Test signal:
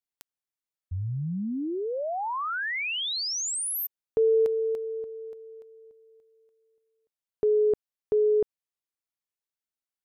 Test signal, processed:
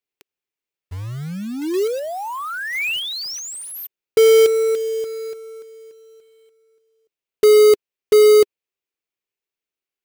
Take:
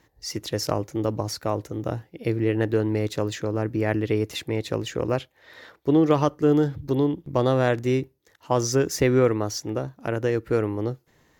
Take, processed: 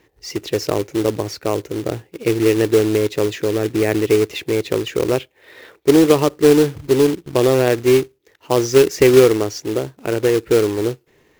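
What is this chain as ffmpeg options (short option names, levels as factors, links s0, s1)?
-af "equalizer=f=400:t=o:w=0.67:g=11,equalizer=f=2500:t=o:w=0.67:g=8,equalizer=f=10000:t=o:w=0.67:g=-5,acrusher=bits=3:mode=log:mix=0:aa=0.000001,volume=1.12"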